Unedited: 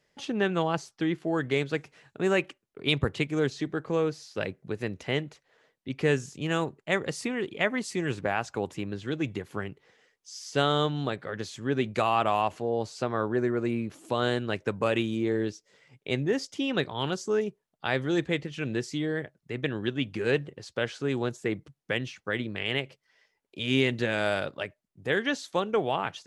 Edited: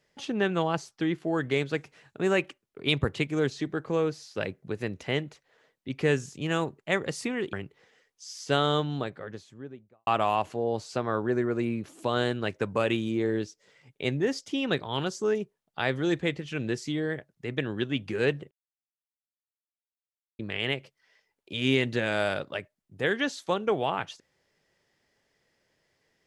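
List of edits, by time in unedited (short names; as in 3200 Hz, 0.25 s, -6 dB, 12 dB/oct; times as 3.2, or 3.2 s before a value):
7.53–9.59 cut
10.75–12.13 studio fade out
20.57–22.45 mute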